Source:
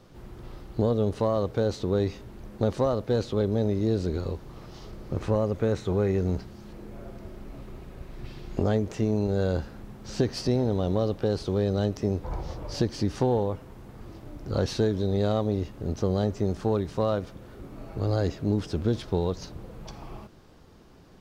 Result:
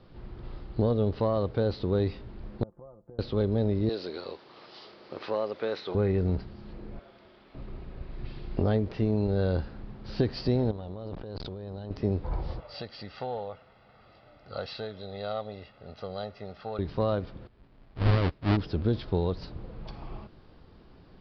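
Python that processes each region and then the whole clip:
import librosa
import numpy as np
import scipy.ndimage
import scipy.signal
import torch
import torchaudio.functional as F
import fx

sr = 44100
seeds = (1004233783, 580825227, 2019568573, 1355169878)

y = fx.chain(x, sr, fx.lowpass(hz=1200.0, slope=24),
    fx.comb(ms=5.8, depth=0.55),
    fx.gate_flip(shuts_db=-24.0, range_db=-25), at=(2.63, 3.19))
y = fx.chain(y, sr, fx.highpass(hz=430.0, slope=12),
    fx.high_shelf(hz=2700.0, db=9.5), at=(3.89, 5.95))
y = fx.chain(y, sr, fx.highpass(hz=1100.0, slope=6),
    fx.peak_eq(hz=3400.0, db=6.0, octaves=0.21), at=(6.99, 7.55))
y = fx.chain(y, sr, fx.over_compress(threshold_db=-35.0, ratio=-1.0),
    fx.transformer_sat(knee_hz=600.0), at=(10.71, 11.91))
y = fx.chain(y, sr, fx.highpass(hz=1100.0, slope=6),
    fx.air_absorb(metres=77.0),
    fx.comb(ms=1.5, depth=0.62), at=(12.6, 16.79))
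y = fx.chain(y, sr, fx.halfwave_hold(),
    fx.air_absorb(metres=52.0),
    fx.upward_expand(threshold_db=-32.0, expansion=2.5), at=(17.47, 18.57))
y = scipy.signal.sosfilt(scipy.signal.butter(12, 5000.0, 'lowpass', fs=sr, output='sos'), y)
y = fx.low_shelf(y, sr, hz=83.0, db=5.5)
y = y * librosa.db_to_amplitude(-2.0)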